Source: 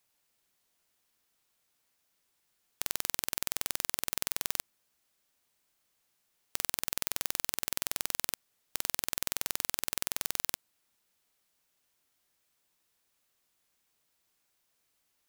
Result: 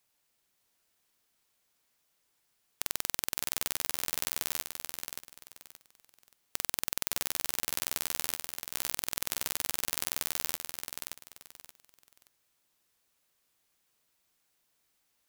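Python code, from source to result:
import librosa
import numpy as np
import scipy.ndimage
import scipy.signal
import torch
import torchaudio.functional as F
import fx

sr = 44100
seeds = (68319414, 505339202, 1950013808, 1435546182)

y = fx.echo_feedback(x, sr, ms=576, feedback_pct=25, wet_db=-6.0)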